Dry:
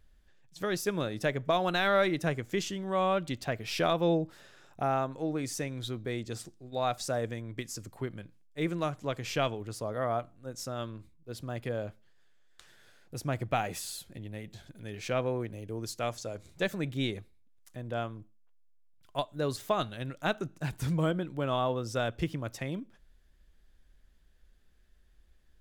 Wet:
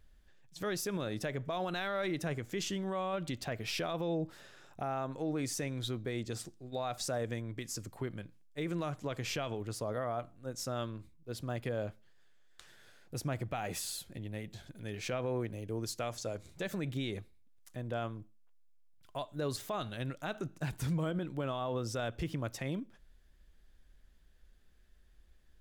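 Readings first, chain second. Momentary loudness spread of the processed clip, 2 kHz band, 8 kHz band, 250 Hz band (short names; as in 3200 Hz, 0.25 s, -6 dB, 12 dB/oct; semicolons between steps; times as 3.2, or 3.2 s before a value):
8 LU, -6.0 dB, -0.5 dB, -3.5 dB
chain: limiter -27 dBFS, peak gain reduction 11 dB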